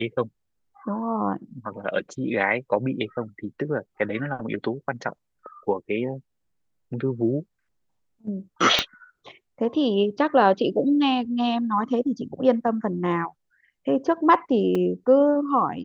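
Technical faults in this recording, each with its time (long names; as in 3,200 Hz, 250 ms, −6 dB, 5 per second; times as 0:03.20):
0:08.79: click −5 dBFS
0:14.75: drop-out 3.7 ms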